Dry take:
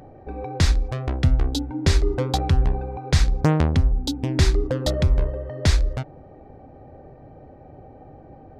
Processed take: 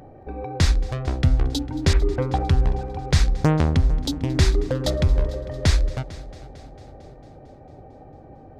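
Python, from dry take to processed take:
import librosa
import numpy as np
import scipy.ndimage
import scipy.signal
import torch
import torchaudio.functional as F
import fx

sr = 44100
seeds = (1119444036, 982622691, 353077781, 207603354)

p1 = fx.lowpass(x, sr, hz=2500.0, slope=24, at=(1.93, 2.43))
y = p1 + fx.echo_heads(p1, sr, ms=225, heads='first and second', feedback_pct=56, wet_db=-21.5, dry=0)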